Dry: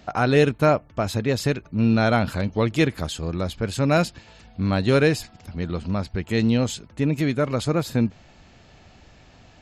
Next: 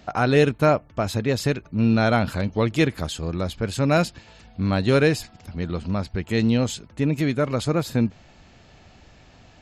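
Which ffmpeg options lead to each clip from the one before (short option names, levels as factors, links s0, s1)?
-af anull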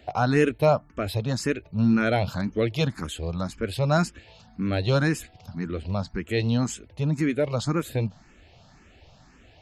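-filter_complex "[0:a]asplit=2[s0][s1];[s1]afreqshift=1.9[s2];[s0][s2]amix=inputs=2:normalize=1"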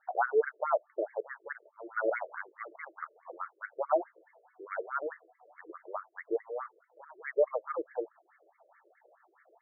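-af "afftfilt=real='re*between(b*sr/1024,440*pow(1600/440,0.5+0.5*sin(2*PI*4.7*pts/sr))/1.41,440*pow(1600/440,0.5+0.5*sin(2*PI*4.7*pts/sr))*1.41)':imag='im*between(b*sr/1024,440*pow(1600/440,0.5+0.5*sin(2*PI*4.7*pts/sr))/1.41,440*pow(1600/440,0.5+0.5*sin(2*PI*4.7*pts/sr))*1.41)':win_size=1024:overlap=0.75"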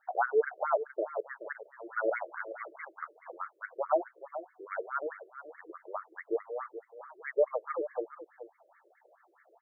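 -af "aecho=1:1:427:0.237"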